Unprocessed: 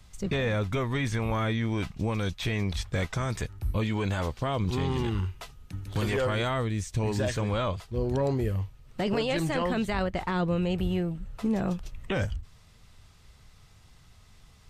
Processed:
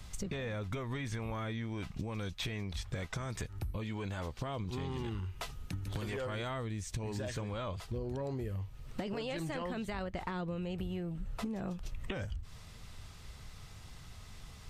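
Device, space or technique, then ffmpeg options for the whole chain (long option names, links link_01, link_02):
serial compression, peaks first: -af "acompressor=threshold=-35dB:ratio=6,acompressor=threshold=-42dB:ratio=2.5,volume=5dB"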